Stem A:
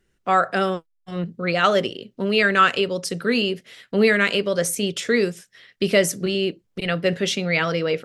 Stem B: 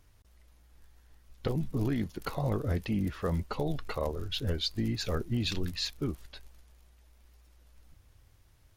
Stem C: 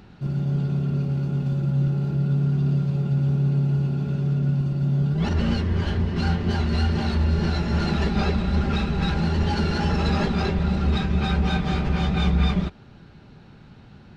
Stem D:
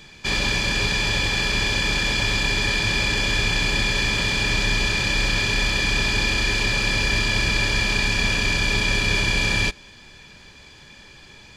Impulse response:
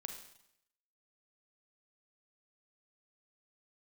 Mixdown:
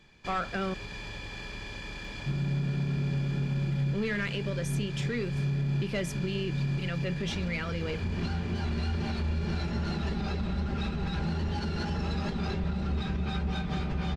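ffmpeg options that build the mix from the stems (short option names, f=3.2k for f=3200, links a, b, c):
-filter_complex "[0:a]asoftclip=type=tanh:threshold=-12dB,lowpass=f=1.7k:p=1,equalizer=f=640:t=o:w=2.3:g=-10,volume=-0.5dB,asplit=3[a][b][c];[a]atrim=end=0.74,asetpts=PTS-STARTPTS,afade=t=out:st=0.736:d=0.004:c=hsin[d];[b]atrim=start=0.74:end=3.71,asetpts=PTS-STARTPTS,volume=0[e];[c]atrim=start=3.71,asetpts=PTS-STARTPTS,afade=t=in:d=0.004:c=hsin[f];[d][e][f]concat=n=3:v=0:a=1,asplit=2[g][h];[1:a]adelay=1950,volume=-19.5dB[i];[2:a]acrossover=split=230|3000[j][k][l];[k]acompressor=threshold=-26dB:ratio=6[m];[j][m][l]amix=inputs=3:normalize=0,adelay=2050,volume=-1.5dB[n];[3:a]highshelf=f=2.9k:g=-9.5,acompressor=threshold=-26dB:ratio=3,volume=-11.5dB[o];[h]apad=whole_len=715016[p];[n][p]sidechaincompress=threshold=-35dB:ratio=8:attack=16:release=326[q];[g][i][q][o]amix=inputs=4:normalize=0,alimiter=limit=-22.5dB:level=0:latency=1:release=248"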